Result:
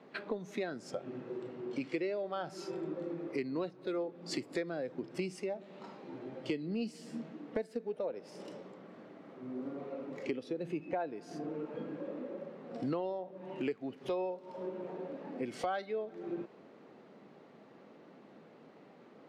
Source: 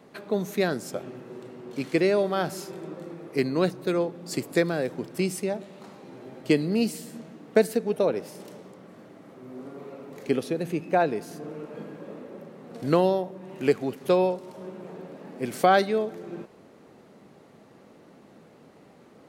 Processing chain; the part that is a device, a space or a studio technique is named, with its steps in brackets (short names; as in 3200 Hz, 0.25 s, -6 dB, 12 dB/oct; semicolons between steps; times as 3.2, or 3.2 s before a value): AM radio (BPF 170–4000 Hz; compressor 6:1, threshold -36 dBFS, peak gain reduction 20 dB; soft clip -25.5 dBFS, distortion -24 dB); spectral noise reduction 7 dB; gain +3.5 dB